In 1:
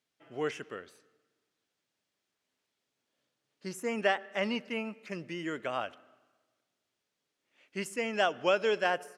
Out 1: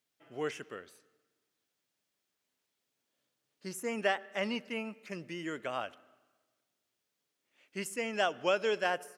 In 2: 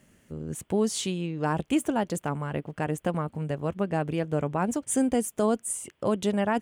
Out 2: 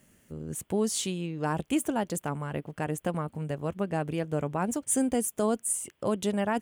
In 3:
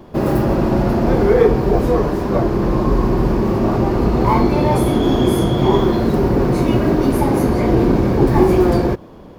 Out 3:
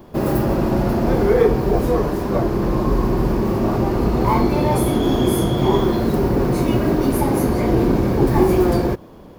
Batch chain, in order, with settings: treble shelf 9.2 kHz +10 dB; trim -2.5 dB

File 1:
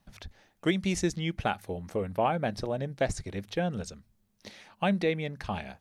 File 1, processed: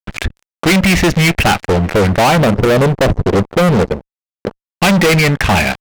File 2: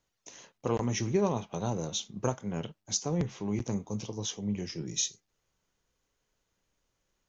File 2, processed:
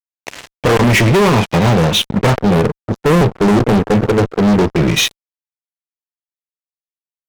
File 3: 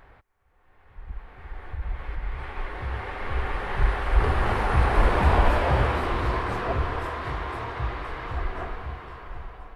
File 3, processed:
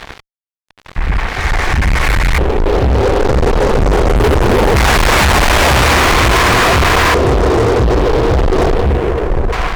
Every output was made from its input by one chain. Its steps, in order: LFO low-pass square 0.21 Hz 470–2400 Hz; fuzz box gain 39 dB, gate -48 dBFS; trim +4.5 dB

